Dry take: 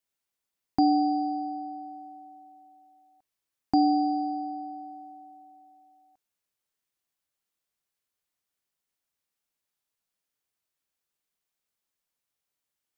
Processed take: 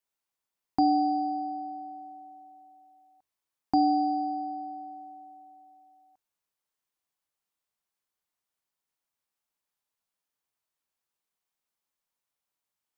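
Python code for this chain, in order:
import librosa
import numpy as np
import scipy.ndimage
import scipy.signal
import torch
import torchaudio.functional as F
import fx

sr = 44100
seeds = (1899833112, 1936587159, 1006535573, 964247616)

y = fx.peak_eq(x, sr, hz=950.0, db=5.5, octaves=0.89)
y = fx.hum_notches(y, sr, base_hz=50, count=2)
y = F.gain(torch.from_numpy(y), -3.0).numpy()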